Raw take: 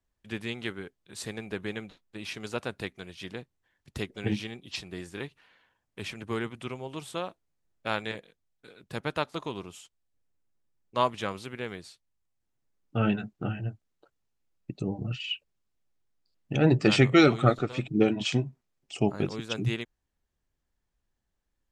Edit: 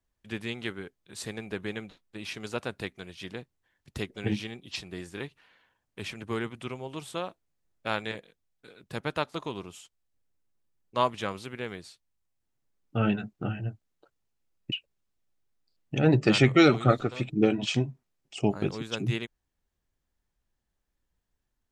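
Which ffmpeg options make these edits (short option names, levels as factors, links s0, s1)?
-filter_complex "[0:a]asplit=2[s0][s1];[s0]atrim=end=14.722[s2];[s1]atrim=start=15.298[s3];[s2][s3]acrossfade=d=0.004:c1=hsin:c2=hsin"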